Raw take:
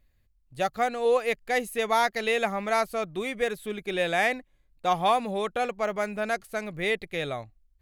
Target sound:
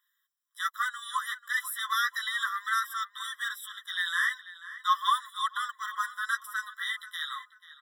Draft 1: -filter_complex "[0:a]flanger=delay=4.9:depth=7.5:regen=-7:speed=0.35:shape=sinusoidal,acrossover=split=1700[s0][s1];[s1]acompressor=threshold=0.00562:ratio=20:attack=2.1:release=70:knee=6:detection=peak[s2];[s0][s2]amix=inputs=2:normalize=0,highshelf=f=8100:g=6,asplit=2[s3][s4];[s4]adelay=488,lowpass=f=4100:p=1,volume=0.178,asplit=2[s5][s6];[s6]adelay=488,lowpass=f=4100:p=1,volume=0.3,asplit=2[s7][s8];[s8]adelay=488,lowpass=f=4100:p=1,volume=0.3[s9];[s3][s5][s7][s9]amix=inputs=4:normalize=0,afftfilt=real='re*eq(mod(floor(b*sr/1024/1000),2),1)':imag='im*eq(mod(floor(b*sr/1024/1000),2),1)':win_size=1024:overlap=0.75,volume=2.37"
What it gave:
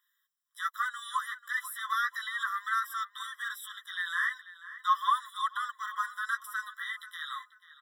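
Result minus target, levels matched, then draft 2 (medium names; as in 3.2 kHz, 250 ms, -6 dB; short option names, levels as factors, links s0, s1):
compression: peak gain reduction +10.5 dB
-filter_complex "[0:a]flanger=delay=4.9:depth=7.5:regen=-7:speed=0.35:shape=sinusoidal,acrossover=split=1700[s0][s1];[s1]acompressor=threshold=0.02:ratio=20:attack=2.1:release=70:knee=6:detection=peak[s2];[s0][s2]amix=inputs=2:normalize=0,highshelf=f=8100:g=6,asplit=2[s3][s4];[s4]adelay=488,lowpass=f=4100:p=1,volume=0.178,asplit=2[s5][s6];[s6]adelay=488,lowpass=f=4100:p=1,volume=0.3,asplit=2[s7][s8];[s8]adelay=488,lowpass=f=4100:p=1,volume=0.3[s9];[s3][s5][s7][s9]amix=inputs=4:normalize=0,afftfilt=real='re*eq(mod(floor(b*sr/1024/1000),2),1)':imag='im*eq(mod(floor(b*sr/1024/1000),2),1)':win_size=1024:overlap=0.75,volume=2.37"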